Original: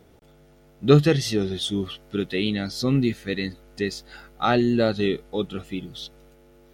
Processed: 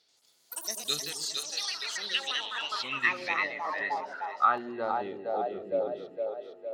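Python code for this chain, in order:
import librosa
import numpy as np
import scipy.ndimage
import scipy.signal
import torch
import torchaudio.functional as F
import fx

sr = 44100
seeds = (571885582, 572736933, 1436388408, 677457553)

p1 = fx.level_steps(x, sr, step_db=20, at=(0.99, 2.72))
p2 = p1 + fx.echo_split(p1, sr, split_hz=430.0, low_ms=127, high_ms=461, feedback_pct=52, wet_db=-5.0, dry=0)
p3 = fx.filter_sweep_bandpass(p2, sr, from_hz=4500.0, to_hz=580.0, start_s=2.07, end_s=5.77, q=5.6)
p4 = fx.rider(p3, sr, range_db=5, speed_s=2.0)
p5 = fx.echo_pitch(p4, sr, ms=85, semitones=7, count=3, db_per_echo=-3.0)
y = F.gain(torch.from_numpy(p5), 6.0).numpy()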